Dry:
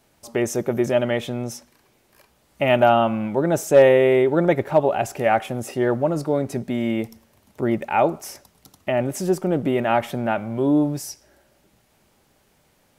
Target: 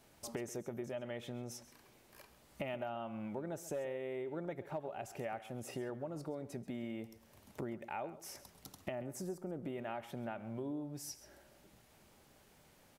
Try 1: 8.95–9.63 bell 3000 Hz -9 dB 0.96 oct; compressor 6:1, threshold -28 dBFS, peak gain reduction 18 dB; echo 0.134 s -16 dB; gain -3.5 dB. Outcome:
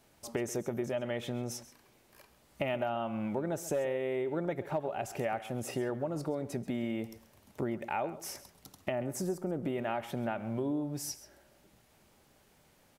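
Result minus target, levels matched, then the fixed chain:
compressor: peak gain reduction -8 dB
8.95–9.63 bell 3000 Hz -9 dB 0.96 oct; compressor 6:1, threshold -37.5 dBFS, peak gain reduction 26 dB; echo 0.134 s -16 dB; gain -3.5 dB

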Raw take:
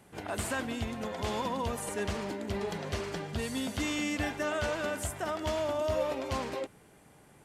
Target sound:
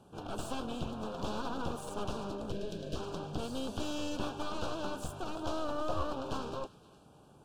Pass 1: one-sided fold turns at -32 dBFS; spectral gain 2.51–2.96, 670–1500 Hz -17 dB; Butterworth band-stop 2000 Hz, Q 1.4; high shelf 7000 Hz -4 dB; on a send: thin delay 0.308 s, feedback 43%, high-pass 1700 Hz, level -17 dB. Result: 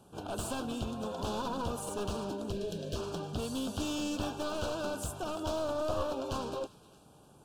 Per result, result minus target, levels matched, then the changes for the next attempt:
one-sided fold: distortion -9 dB; 8000 Hz band +4.0 dB
change: one-sided fold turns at -38.5 dBFS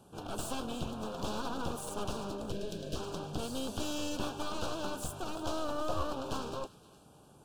8000 Hz band +5.0 dB
change: high shelf 7000 Hz -15 dB

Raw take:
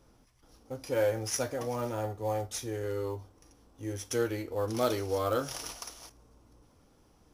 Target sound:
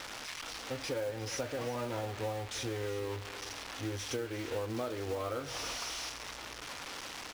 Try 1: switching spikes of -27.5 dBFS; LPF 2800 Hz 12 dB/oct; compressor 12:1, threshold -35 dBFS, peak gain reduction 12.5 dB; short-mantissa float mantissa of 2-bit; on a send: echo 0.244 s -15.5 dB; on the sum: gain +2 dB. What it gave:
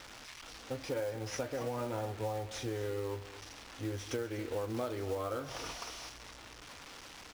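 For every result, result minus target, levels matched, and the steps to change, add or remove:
echo 0.112 s early; switching spikes: distortion -7 dB
change: echo 0.356 s -15.5 dB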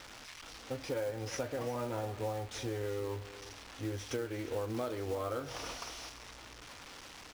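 switching spikes: distortion -7 dB
change: switching spikes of -20 dBFS

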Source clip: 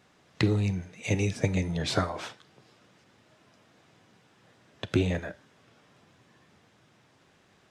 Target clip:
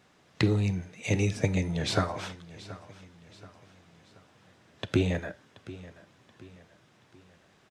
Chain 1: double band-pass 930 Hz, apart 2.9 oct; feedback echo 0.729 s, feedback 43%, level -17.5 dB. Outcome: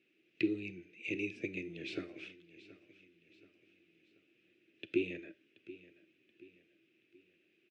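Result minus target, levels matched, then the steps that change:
1000 Hz band -17.5 dB
remove: double band-pass 930 Hz, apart 2.9 oct

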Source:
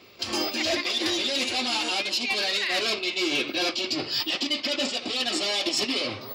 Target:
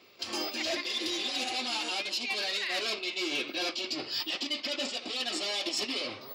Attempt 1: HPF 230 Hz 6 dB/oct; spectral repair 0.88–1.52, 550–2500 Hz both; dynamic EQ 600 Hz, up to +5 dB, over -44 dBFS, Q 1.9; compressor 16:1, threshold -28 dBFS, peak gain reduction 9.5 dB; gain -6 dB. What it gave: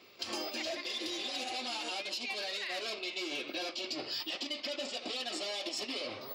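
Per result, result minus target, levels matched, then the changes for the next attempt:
compressor: peak gain reduction +9.5 dB; 500 Hz band +2.5 dB
remove: compressor 16:1, threshold -28 dBFS, peak gain reduction 9.5 dB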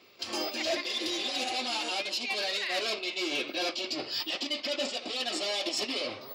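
500 Hz band +3.0 dB
remove: dynamic EQ 600 Hz, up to +5 dB, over -44 dBFS, Q 1.9

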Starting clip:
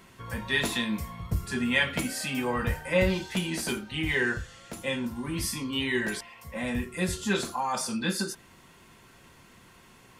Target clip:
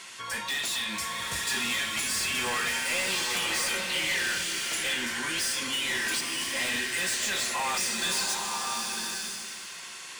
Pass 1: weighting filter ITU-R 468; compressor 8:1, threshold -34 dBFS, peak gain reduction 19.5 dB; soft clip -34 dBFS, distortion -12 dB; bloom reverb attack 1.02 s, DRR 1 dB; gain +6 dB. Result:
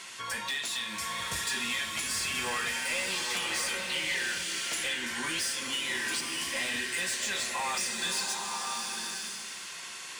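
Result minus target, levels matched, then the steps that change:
compressor: peak gain reduction +7.5 dB
change: compressor 8:1, threshold -25.5 dBFS, peak gain reduction 12 dB

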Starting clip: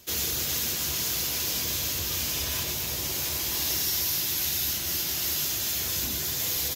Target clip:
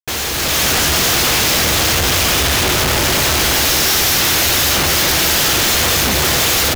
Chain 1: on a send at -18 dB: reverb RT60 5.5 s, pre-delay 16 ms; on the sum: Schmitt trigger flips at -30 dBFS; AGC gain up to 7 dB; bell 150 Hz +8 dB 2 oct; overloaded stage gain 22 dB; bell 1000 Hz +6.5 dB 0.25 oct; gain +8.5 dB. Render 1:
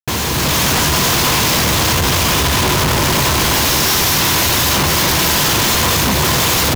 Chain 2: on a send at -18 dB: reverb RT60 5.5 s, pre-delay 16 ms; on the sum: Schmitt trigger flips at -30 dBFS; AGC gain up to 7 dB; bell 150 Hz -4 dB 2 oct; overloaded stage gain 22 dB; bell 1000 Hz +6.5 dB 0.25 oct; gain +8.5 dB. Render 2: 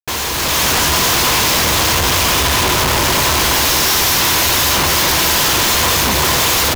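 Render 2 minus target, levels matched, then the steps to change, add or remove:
1000 Hz band +3.5 dB
change: second bell 1000 Hz -3 dB 0.25 oct

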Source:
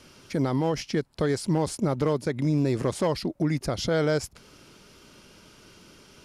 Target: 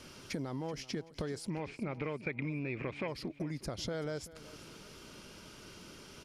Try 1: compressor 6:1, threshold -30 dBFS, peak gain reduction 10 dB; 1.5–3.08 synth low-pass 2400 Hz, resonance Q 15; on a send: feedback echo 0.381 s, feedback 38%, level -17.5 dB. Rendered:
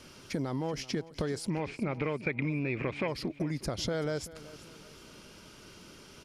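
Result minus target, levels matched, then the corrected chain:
compressor: peak gain reduction -5.5 dB
compressor 6:1, threshold -36.5 dBFS, peak gain reduction 15 dB; 1.5–3.08 synth low-pass 2400 Hz, resonance Q 15; on a send: feedback echo 0.381 s, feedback 38%, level -17.5 dB

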